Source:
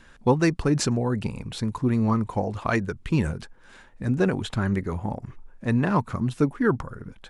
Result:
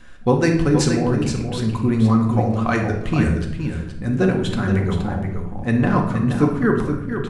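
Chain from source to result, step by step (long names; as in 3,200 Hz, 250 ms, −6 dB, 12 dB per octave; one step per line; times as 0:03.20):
notch filter 890 Hz, Q 12
single-tap delay 472 ms −7.5 dB
on a send at −1.5 dB: convolution reverb RT60 0.80 s, pre-delay 4 ms
on the sum: level +2 dB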